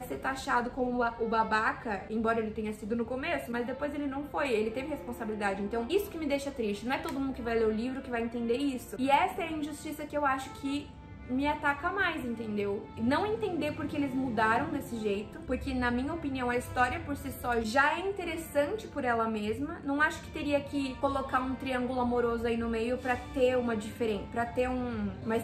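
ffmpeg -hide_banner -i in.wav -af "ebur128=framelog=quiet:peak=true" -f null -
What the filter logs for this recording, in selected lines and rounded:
Integrated loudness:
  I:         -31.7 LUFS
  Threshold: -41.7 LUFS
Loudness range:
  LRA:         2.2 LU
  Threshold: -51.7 LUFS
  LRA low:   -33.0 LUFS
  LRA high:  -30.8 LUFS
True peak:
  Peak:      -11.1 dBFS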